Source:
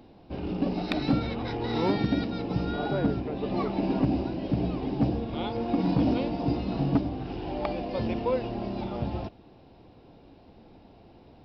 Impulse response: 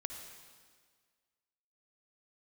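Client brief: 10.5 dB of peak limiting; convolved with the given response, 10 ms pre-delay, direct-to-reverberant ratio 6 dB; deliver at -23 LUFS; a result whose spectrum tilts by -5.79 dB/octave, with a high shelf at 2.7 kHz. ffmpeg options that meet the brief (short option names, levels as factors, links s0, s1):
-filter_complex "[0:a]highshelf=f=2700:g=6.5,alimiter=limit=0.0708:level=0:latency=1,asplit=2[s0][s1];[1:a]atrim=start_sample=2205,adelay=10[s2];[s1][s2]afir=irnorm=-1:irlink=0,volume=0.562[s3];[s0][s3]amix=inputs=2:normalize=0,volume=2.51"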